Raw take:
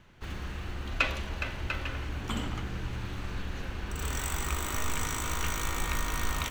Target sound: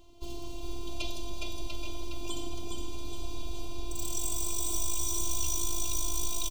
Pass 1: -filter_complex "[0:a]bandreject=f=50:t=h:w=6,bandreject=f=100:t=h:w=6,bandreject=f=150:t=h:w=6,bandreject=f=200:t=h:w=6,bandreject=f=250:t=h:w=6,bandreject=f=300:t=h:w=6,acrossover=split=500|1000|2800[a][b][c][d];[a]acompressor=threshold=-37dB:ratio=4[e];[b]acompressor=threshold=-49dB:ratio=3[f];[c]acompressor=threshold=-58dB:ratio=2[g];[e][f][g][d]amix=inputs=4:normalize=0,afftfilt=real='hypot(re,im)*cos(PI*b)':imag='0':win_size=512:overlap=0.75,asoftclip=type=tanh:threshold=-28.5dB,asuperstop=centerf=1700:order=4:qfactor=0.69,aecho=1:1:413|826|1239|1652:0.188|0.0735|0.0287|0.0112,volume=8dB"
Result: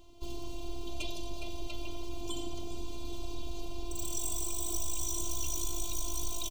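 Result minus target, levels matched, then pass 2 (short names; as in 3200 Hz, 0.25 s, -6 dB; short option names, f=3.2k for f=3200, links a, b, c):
echo-to-direct -10.5 dB; soft clip: distortion +7 dB
-filter_complex "[0:a]bandreject=f=50:t=h:w=6,bandreject=f=100:t=h:w=6,bandreject=f=150:t=h:w=6,bandreject=f=200:t=h:w=6,bandreject=f=250:t=h:w=6,bandreject=f=300:t=h:w=6,acrossover=split=500|1000|2800[a][b][c][d];[a]acompressor=threshold=-37dB:ratio=4[e];[b]acompressor=threshold=-49dB:ratio=3[f];[c]acompressor=threshold=-58dB:ratio=2[g];[e][f][g][d]amix=inputs=4:normalize=0,afftfilt=real='hypot(re,im)*cos(PI*b)':imag='0':win_size=512:overlap=0.75,asoftclip=type=tanh:threshold=-21.5dB,asuperstop=centerf=1700:order=4:qfactor=0.69,aecho=1:1:413|826|1239|1652|2065:0.631|0.246|0.096|0.0374|0.0146,volume=8dB"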